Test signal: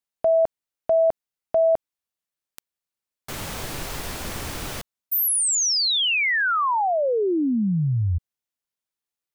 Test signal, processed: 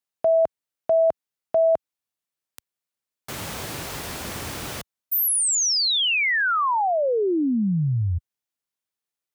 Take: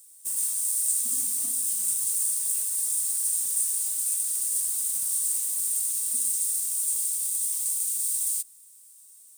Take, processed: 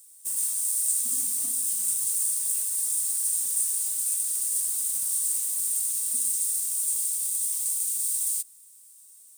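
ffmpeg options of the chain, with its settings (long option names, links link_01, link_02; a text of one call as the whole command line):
ffmpeg -i in.wav -af "highpass=69" out.wav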